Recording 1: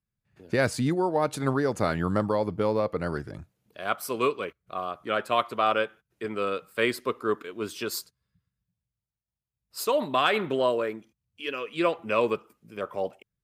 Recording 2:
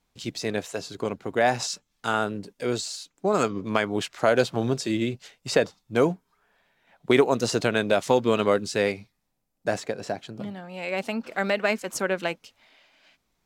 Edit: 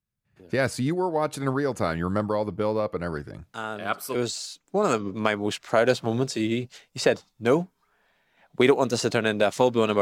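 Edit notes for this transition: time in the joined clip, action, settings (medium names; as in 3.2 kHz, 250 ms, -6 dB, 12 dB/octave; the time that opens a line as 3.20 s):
recording 1
3.43 s: add recording 2 from 1.93 s 0.72 s -8 dB
4.15 s: go over to recording 2 from 2.65 s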